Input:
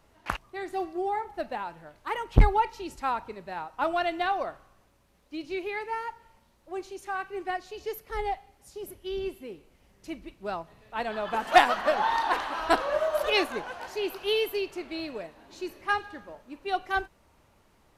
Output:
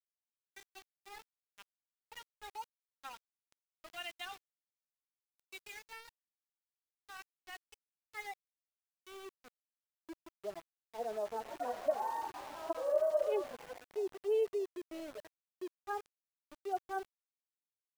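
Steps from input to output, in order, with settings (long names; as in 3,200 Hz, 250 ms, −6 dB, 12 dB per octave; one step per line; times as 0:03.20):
harmonic-percussive split with one part muted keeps harmonic
band-pass filter sweep 3,300 Hz → 520 Hz, 0:07.56–0:10.14
centre clipping without the shift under −46 dBFS
level −1.5 dB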